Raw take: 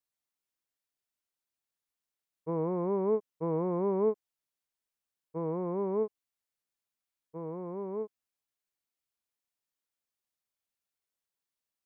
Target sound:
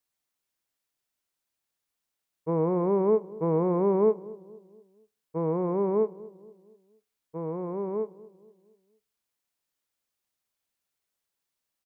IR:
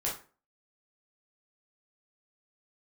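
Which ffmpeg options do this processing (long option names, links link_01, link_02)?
-filter_complex "[0:a]asplit=2[link_01][link_02];[link_02]adelay=235,lowpass=frequency=960:poles=1,volume=-19dB,asplit=2[link_03][link_04];[link_04]adelay=235,lowpass=frequency=960:poles=1,volume=0.5,asplit=2[link_05][link_06];[link_06]adelay=235,lowpass=frequency=960:poles=1,volume=0.5,asplit=2[link_07][link_08];[link_08]adelay=235,lowpass=frequency=960:poles=1,volume=0.5[link_09];[link_01][link_03][link_05][link_07][link_09]amix=inputs=5:normalize=0,asplit=2[link_10][link_11];[1:a]atrim=start_sample=2205[link_12];[link_11][link_12]afir=irnorm=-1:irlink=0,volume=-22.5dB[link_13];[link_10][link_13]amix=inputs=2:normalize=0,volume=5dB"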